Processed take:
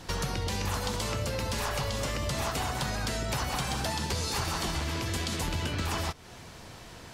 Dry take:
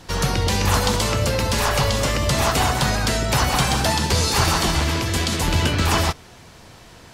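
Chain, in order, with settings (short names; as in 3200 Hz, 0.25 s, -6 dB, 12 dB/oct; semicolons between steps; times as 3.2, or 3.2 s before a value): compressor 4:1, threshold -28 dBFS, peak gain reduction 12 dB; gain -2 dB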